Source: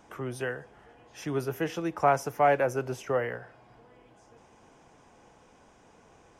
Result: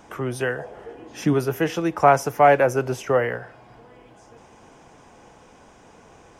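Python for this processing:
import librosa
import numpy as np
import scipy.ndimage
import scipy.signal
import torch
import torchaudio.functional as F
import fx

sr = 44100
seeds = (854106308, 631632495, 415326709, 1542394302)

y = fx.peak_eq(x, sr, hz=fx.line((0.58, 700.0), (1.33, 200.0)), db=14.0, octaves=0.86, at=(0.58, 1.33), fade=0.02)
y = y * 10.0 ** (8.0 / 20.0)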